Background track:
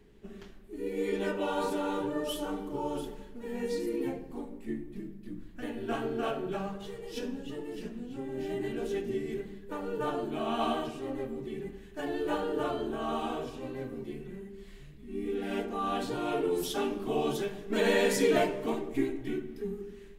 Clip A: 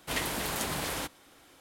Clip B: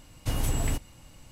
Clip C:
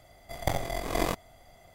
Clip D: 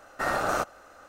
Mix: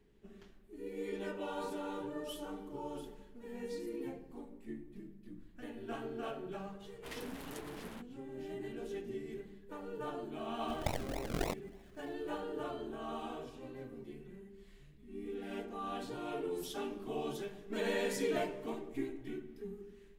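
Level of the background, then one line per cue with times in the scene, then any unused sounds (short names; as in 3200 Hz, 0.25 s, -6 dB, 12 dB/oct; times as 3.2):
background track -9 dB
6.95 add A -15 dB + Wiener smoothing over 9 samples
10.39 add C -7.5 dB + decimation with a swept rate 39×, swing 60% 3.4 Hz
not used: B, D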